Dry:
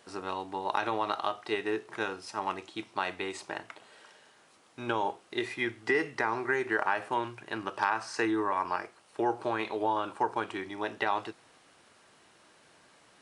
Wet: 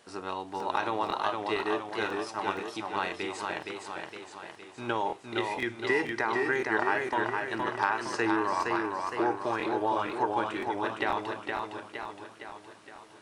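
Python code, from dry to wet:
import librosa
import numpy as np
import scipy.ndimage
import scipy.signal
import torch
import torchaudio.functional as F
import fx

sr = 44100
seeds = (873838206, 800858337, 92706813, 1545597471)

y = fx.buffer_crackle(x, sr, first_s=0.58, period_s=0.5, block=1024, kind='repeat')
y = fx.echo_warbled(y, sr, ms=464, feedback_pct=55, rate_hz=2.8, cents=87, wet_db=-4)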